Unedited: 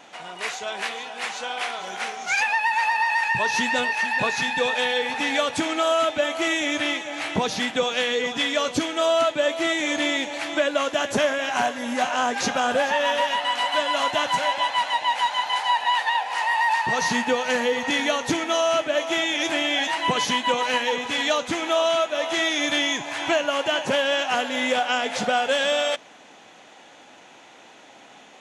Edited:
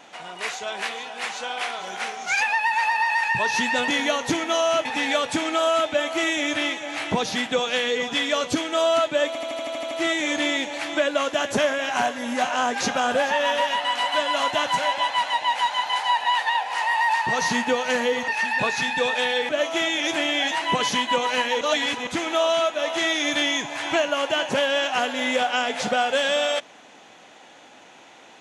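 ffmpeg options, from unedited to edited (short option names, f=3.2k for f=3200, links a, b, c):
-filter_complex "[0:a]asplit=15[a][b][c][d][e][f][g][h][i][j][k][l][m][n][o];[a]atrim=end=3.882[p];[b]atrim=start=17.878:end=18.852[q];[c]atrim=start=5.088:end=9.592[r];[d]atrim=start=9.508:end=9.592[s];[e]atrim=start=9.508:end=9.592[t];[f]atrim=start=9.508:end=9.592[u];[g]atrim=start=9.508:end=9.592[v];[h]atrim=start=9.508:end=9.592[w];[i]atrim=start=9.508:end=9.592[x];[j]atrim=start=9.508:end=9.592[y];[k]atrim=start=9.508:end=17.882[z];[l]atrim=start=3.878:end=5.092[aa];[m]atrim=start=18.848:end=20.972[ab];[n]atrim=start=20.968:end=21.432,asetpts=PTS-STARTPTS,areverse[ac];[o]atrim=start=21.428[ad];[p][q]acrossfade=d=0.004:c1=hsin:c2=hsin[ae];[ae][r]acrossfade=d=0.004:c1=hsin:c2=hsin[af];[af][s]acrossfade=d=0.004:c1=hsin:c2=hsin[ag];[ag][t]acrossfade=d=0.004:c1=hsin:c2=hsin[ah];[ah][u]acrossfade=d=0.004:c1=hsin:c2=hsin[ai];[ai][v]acrossfade=d=0.004:c1=hsin:c2=hsin[aj];[aj][w]acrossfade=d=0.004:c1=hsin:c2=hsin[ak];[ak][x]acrossfade=d=0.004:c1=hsin:c2=hsin[al];[al][y]acrossfade=d=0.004:c1=hsin:c2=hsin[am];[am][z]acrossfade=d=0.004:c1=hsin:c2=hsin[an];[an][aa]acrossfade=d=0.004:c1=hsin:c2=hsin[ao];[ao][ab]acrossfade=d=0.004:c1=hsin:c2=hsin[ap];[ap][ac]acrossfade=d=0.004:c1=hsin:c2=hsin[aq];[aq][ad]acrossfade=d=0.004:c1=hsin:c2=hsin"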